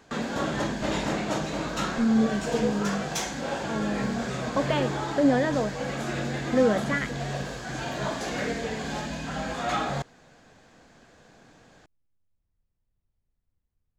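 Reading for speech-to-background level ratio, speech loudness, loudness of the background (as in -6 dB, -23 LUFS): 3.0 dB, -27.5 LUFS, -30.5 LUFS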